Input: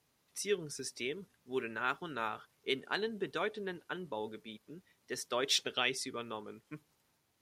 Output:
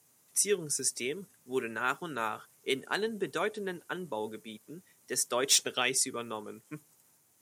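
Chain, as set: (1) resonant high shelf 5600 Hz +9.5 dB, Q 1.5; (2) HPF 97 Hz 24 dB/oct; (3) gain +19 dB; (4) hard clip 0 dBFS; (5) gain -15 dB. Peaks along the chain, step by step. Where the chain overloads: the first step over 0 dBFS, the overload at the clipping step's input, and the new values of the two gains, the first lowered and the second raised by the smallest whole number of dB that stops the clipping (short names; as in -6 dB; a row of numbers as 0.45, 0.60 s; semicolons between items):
-15.0, -15.0, +4.0, 0.0, -15.0 dBFS; step 3, 4.0 dB; step 3 +15 dB, step 5 -11 dB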